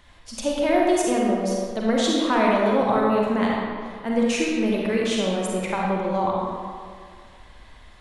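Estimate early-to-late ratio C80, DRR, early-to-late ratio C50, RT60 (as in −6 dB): 0.0 dB, −3.5 dB, −2.0 dB, 1.9 s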